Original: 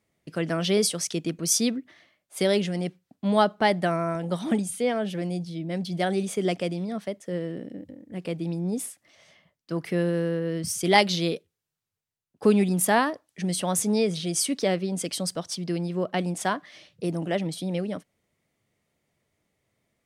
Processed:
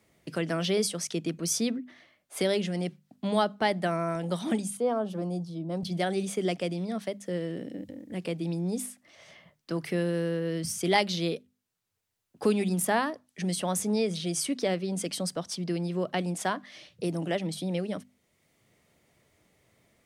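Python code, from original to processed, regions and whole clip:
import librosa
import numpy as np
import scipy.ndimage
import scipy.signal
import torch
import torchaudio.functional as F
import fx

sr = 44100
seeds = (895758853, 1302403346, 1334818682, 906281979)

y = fx.chain(x, sr, fx.high_shelf_res(hz=1500.0, db=-9.0, q=3.0),
    fx.band_widen(depth_pct=40), at=(4.77, 5.83))
y = fx.hum_notches(y, sr, base_hz=50, count=5)
y = fx.band_squash(y, sr, depth_pct=40)
y = y * 10.0 ** (-3.0 / 20.0)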